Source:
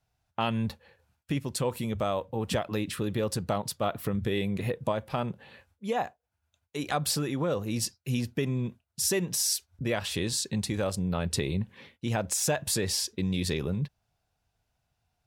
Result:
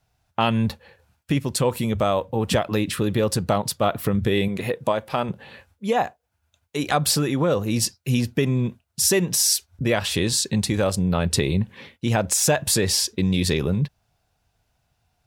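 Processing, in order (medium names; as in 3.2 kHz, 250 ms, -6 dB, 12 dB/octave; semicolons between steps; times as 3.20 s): 4.48–5.29 s: bass shelf 160 Hz -12 dB; trim +8 dB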